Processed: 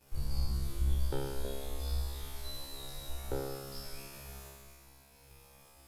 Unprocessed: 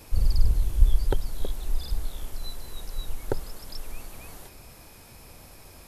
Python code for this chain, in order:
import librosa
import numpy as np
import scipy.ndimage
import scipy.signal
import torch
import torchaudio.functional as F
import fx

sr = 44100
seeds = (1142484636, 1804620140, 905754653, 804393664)

y = fx.leveller(x, sr, passes=2)
y = fx.comb_fb(y, sr, f0_hz=68.0, decay_s=1.5, harmonics='all', damping=0.0, mix_pct=100)
y = y * librosa.db_to_amplitude(4.5)